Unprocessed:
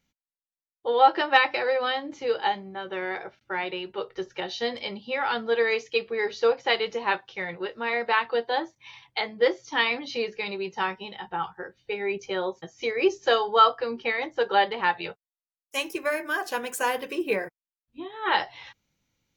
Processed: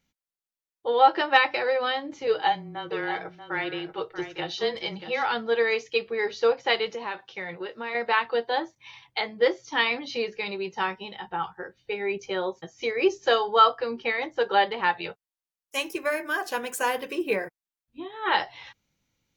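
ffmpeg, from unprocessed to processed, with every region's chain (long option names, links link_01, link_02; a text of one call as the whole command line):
ffmpeg -i in.wav -filter_complex "[0:a]asettb=1/sr,asplit=3[link_01][link_02][link_03];[link_01]atrim=end=2.274[link_04];[link_02]atrim=start=2.27:end=5.26,asetpts=PTS-STARTPTS,afade=type=in:duration=0.004:curve=qsin,afade=type=out:start_time=2.986:duration=0.004:curve=qsin,aecho=1:1:6.1:0.41,atrim=end_sample=131859,afreqshift=-17,aecho=1:1:636:0.299,atrim=end_sample=131859[link_05];[link_03]atrim=start=5.256[link_06];[link_04][link_05]acrossfade=duration=0.004:curve1=hsin:curve2=qsin[link_07];[link_07][link_06]acrossfade=duration=0.004:curve1=qsin:curve2=hsin,asettb=1/sr,asplit=3[link_08][link_09][link_10];[link_08]atrim=end=6.874[link_11];[link_09]atrim=start=6.87:end=7.95,asetpts=PTS-STARTPTS,afade=type=in:duration=0.004:curve=qsin,afade=type=out:start_time=1.076:duration=0.004:curve=qsin,highpass=120,acompressor=threshold=-30dB:ratio=3:attack=3.2:release=140:knee=1:detection=peak[link_12];[link_10]atrim=start=7.946[link_13];[link_11][link_12]acrossfade=duration=0.004:curve1=hsin:curve2=qsin[link_14];[link_14][link_13]acrossfade=duration=0.004:curve1=qsin:curve2=hsin" out.wav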